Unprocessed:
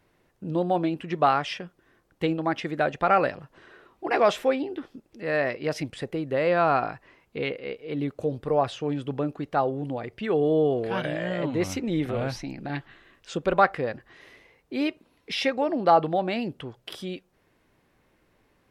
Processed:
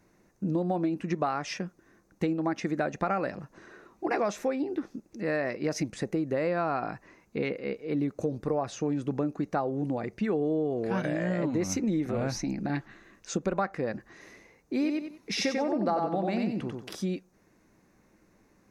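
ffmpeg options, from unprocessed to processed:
ffmpeg -i in.wav -filter_complex "[0:a]asettb=1/sr,asplit=3[link_01][link_02][link_03];[link_01]atrim=end=14.734[link_04];[link_02]atrim=start=14.73:end=16.9,asetpts=PTS-STARTPTS,afade=type=in:duration=0.004:curve=qsin,afade=type=out:start_time=2.166:duration=0.004:curve=qsin,aecho=1:1:93|186|279:0.631|0.158|0.0394,atrim=end_sample=95697[link_05];[link_03]atrim=start=16.896[link_06];[link_04][link_05]acrossfade=duration=0.004:curve1=hsin:curve2=qsin[link_07];[link_07][link_06]acrossfade=duration=0.004:curve1=qsin:curve2=hsin,equalizer=frequency=200:width_type=o:width=0.33:gain=10,equalizer=frequency=315:width_type=o:width=0.33:gain=5,equalizer=frequency=3150:width_type=o:width=0.33:gain=-12,equalizer=frequency=6300:width_type=o:width=0.33:gain=11,acompressor=threshold=-25dB:ratio=6" out.wav

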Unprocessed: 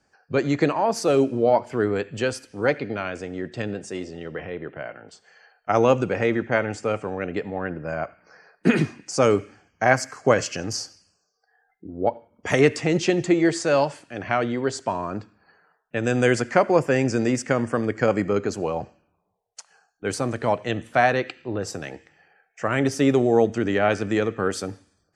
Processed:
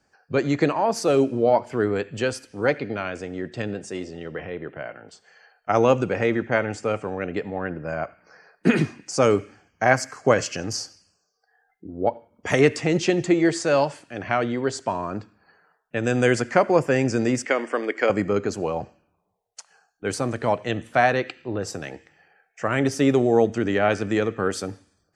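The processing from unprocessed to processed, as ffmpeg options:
ffmpeg -i in.wav -filter_complex "[0:a]asettb=1/sr,asplit=3[link_01][link_02][link_03];[link_01]atrim=end=17.454[link_04];[link_02]atrim=start=17.45:end=18.1,asetpts=PTS-STARTPTS,afade=type=in:duration=0.004:curve=qsin,afade=type=out:start_time=0.646:duration=0.004:curve=qsin,highpass=frequency=300:width=0.5412,highpass=frequency=300:width=1.3066,equalizer=frequency=2100:width_type=q:width=4:gain=8,equalizer=frequency=3100:width_type=q:width=4:gain=6,equalizer=frequency=6400:width_type=q:width=4:gain=-4,lowpass=frequency=8400:width=0.5412,lowpass=frequency=8400:width=1.3066[link_05];[link_03]atrim=start=18.096[link_06];[link_04][link_05]acrossfade=duration=0.004:curve1=hsin:curve2=qsin[link_07];[link_07][link_06]acrossfade=duration=0.004:curve1=qsin:curve2=hsin" out.wav

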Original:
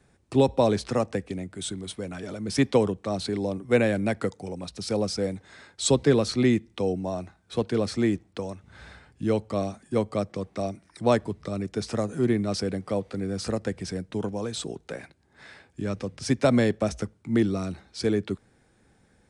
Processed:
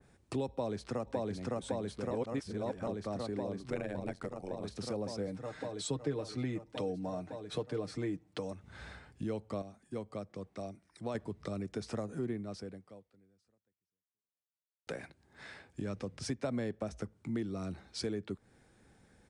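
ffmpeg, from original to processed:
ffmpeg -i in.wav -filter_complex "[0:a]asplit=2[link_01][link_02];[link_02]afade=type=in:start_time=0.5:duration=0.01,afade=type=out:start_time=1.22:duration=0.01,aecho=0:1:560|1120|1680|2240|2800|3360|3920|4480|5040|5600|6160|6720:1|0.8|0.64|0.512|0.4096|0.32768|0.262144|0.209715|0.167772|0.134218|0.107374|0.0858993[link_03];[link_01][link_03]amix=inputs=2:normalize=0,asettb=1/sr,asplit=3[link_04][link_05][link_06];[link_04]atrim=end=3.704[link_07];[link_05]atrim=start=3.7:end=4.64,asetpts=PTS-STARTPTS,afade=type=in:duration=0.004:curve=qsin,afade=type=out:start_time=0.936:duration=0.004:curve=qsin,tremolo=f=91:d=0.919[link_08];[link_06]atrim=start=4.636[link_09];[link_07][link_08]acrossfade=duration=0.004:curve1=hsin:curve2=qsin[link_10];[link_10][link_09]acrossfade=duration=0.004:curve1=qsin:curve2=hsin,asettb=1/sr,asplit=3[link_11][link_12][link_13];[link_11]atrim=end=5.274[link_14];[link_12]atrim=start=5.27:end=8.52,asetpts=PTS-STARTPTS,afade=type=in:duration=0.004:curve=qsin,afade=type=out:start_time=3.246:duration=0.004:curve=qsin,aecho=1:1:6.6:0.65,atrim=end_sample=143325[link_15];[link_13]atrim=start=8.516[link_16];[link_14][link_15]acrossfade=duration=0.004:curve1=hsin:curve2=qsin[link_17];[link_17][link_16]acrossfade=duration=0.004:curve1=qsin:curve2=hsin,asplit=6[link_18][link_19][link_20][link_21][link_22][link_23];[link_18]atrim=end=2.112[link_24];[link_19]atrim=start=2.108:end=2.872,asetpts=PTS-STARTPTS,areverse[link_25];[link_20]atrim=start=2.868:end=9.622[link_26];[link_21]atrim=start=9.618:end=11.152,asetpts=PTS-STARTPTS,volume=-9dB[link_27];[link_22]atrim=start=11.148:end=14.87,asetpts=PTS-STARTPTS,afade=type=out:start_time=1.192:duration=2.53:curve=exp[link_28];[link_23]atrim=start=14.87,asetpts=PTS-STARTPTS,afade=type=in:duration=0.004:curve=hsin[link_29];[link_24][link_25]acrossfade=duration=0.004:curve1=hsin:curve2=hsin[link_30];[link_30][link_26]acrossfade=duration=0.004:curve1=hsin:curve2=hsin[link_31];[link_31][link_27]acrossfade=duration=0.004:curve1=hsin:curve2=hsin[link_32];[link_28][link_29]concat=n=2:v=0:a=1[link_33];[link_32][link_33]acrossfade=duration=0.004:curve1=hsin:curve2=hsin,acompressor=threshold=-35dB:ratio=3,adynamicequalizer=threshold=0.00224:dfrequency=2000:dqfactor=0.7:tfrequency=2000:tqfactor=0.7:attack=5:release=100:ratio=0.375:range=3:mode=cutabove:tftype=highshelf,volume=-2dB" out.wav

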